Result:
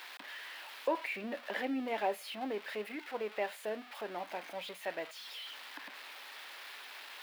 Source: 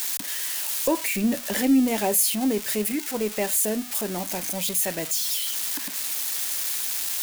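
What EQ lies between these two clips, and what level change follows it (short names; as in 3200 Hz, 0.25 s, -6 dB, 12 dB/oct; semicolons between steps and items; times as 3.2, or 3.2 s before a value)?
HPF 600 Hz 12 dB/oct; air absorption 410 m; -3.0 dB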